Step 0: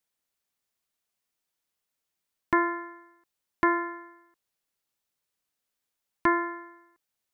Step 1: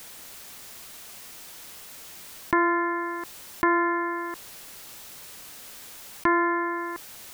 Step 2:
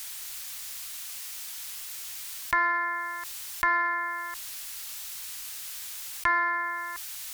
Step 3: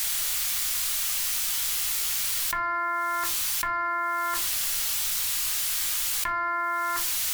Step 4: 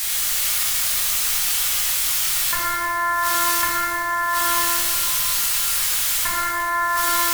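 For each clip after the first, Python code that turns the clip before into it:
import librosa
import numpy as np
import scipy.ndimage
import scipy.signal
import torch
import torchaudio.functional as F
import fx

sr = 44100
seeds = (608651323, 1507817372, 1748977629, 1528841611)

y1 = fx.env_flatten(x, sr, amount_pct=70)
y2 = fx.tone_stack(y1, sr, knobs='10-0-10')
y2 = fx.cheby_harmonics(y2, sr, harmonics=(7,), levels_db=(-37,), full_scale_db=-17.0)
y2 = y2 * 10.0 ** (7.0 / 20.0)
y3 = fx.room_shoebox(y2, sr, seeds[0], volume_m3=130.0, walls='furnished', distance_m=1.3)
y3 = fx.env_flatten(y3, sr, amount_pct=100)
y3 = y3 * 10.0 ** (-6.0 / 20.0)
y4 = fx.rev_plate(y3, sr, seeds[1], rt60_s=3.9, hf_ratio=0.5, predelay_ms=0, drr_db=-5.0)
y4 = y4 * 10.0 ** (2.0 / 20.0)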